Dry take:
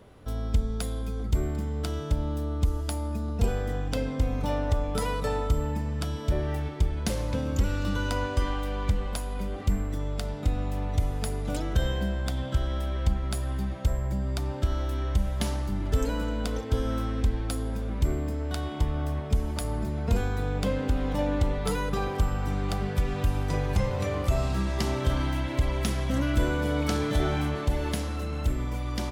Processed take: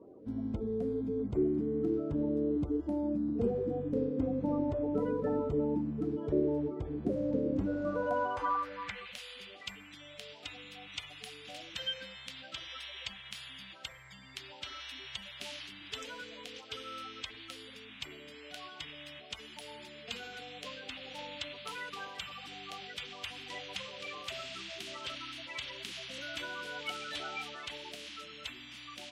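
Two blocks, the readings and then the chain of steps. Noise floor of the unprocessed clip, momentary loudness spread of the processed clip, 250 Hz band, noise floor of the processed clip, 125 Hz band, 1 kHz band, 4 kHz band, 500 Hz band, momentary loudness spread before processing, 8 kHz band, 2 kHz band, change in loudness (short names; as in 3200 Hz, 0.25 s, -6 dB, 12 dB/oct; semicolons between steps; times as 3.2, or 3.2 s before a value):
-33 dBFS, 14 LU, -4.0 dB, -52 dBFS, -18.0 dB, -6.5 dB, -0.5 dB, -4.0 dB, 4 LU, -11.5 dB, -5.0 dB, -8.0 dB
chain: bin magnitudes rounded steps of 30 dB; band-pass sweep 350 Hz -> 3000 Hz, 7.62–9.19; gain +5 dB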